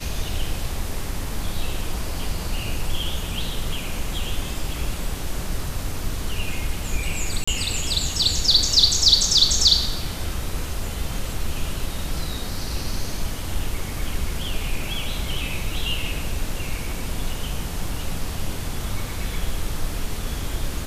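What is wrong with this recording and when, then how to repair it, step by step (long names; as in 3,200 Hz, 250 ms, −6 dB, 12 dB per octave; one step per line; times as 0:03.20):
0:07.44–0:07.47: drop-out 35 ms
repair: repair the gap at 0:07.44, 35 ms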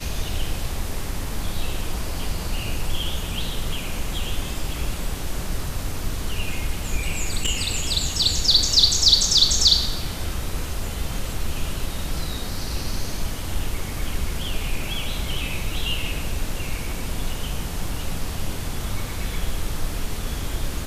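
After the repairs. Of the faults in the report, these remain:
none of them is left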